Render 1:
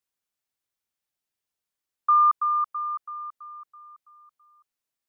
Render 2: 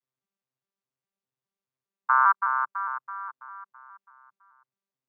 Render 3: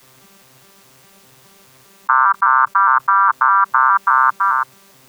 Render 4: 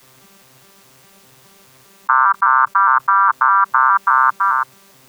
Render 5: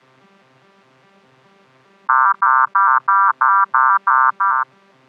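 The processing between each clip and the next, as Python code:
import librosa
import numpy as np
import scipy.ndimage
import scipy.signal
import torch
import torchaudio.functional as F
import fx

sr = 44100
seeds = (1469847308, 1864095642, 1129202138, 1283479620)

y1 = fx.vocoder_arp(x, sr, chord='bare fifth', root=48, every_ms=205)
y1 = fx.peak_eq(y1, sr, hz=1100.0, db=5.5, octaves=0.21)
y1 = y1 * 10.0 ** (-3.5 / 20.0)
y2 = fx.env_flatten(y1, sr, amount_pct=100)
y2 = y2 * 10.0 ** (5.0 / 20.0)
y3 = y2
y4 = fx.bandpass_edges(y3, sr, low_hz=140.0, high_hz=2400.0)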